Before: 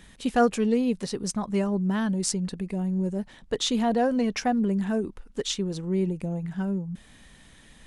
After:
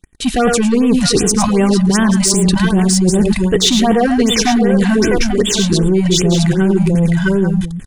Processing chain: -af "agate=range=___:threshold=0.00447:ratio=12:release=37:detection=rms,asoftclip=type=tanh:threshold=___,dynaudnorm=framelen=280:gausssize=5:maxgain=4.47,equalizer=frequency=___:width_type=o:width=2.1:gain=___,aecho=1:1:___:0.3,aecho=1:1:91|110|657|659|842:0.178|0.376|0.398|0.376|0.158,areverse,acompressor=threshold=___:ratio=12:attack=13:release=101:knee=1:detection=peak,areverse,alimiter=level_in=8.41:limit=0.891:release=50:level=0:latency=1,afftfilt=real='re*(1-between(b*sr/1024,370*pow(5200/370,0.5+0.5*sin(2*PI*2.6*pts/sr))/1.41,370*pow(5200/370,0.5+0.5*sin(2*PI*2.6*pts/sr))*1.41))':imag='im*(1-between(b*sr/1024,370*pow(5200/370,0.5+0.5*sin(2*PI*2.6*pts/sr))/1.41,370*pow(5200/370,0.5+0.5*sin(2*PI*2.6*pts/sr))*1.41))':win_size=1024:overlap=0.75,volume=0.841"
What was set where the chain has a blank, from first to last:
0.0178, 0.112, 630, -6, 2.6, 0.0447